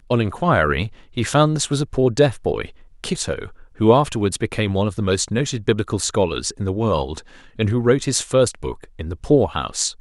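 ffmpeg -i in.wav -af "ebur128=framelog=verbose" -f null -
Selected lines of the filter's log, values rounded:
Integrated loudness:
  I:         -20.0 LUFS
  Threshold: -30.4 LUFS
Loudness range:
  LRA:         1.6 LU
  Threshold: -40.7 LUFS
  LRA low:   -21.5 LUFS
  LRA high:  -19.9 LUFS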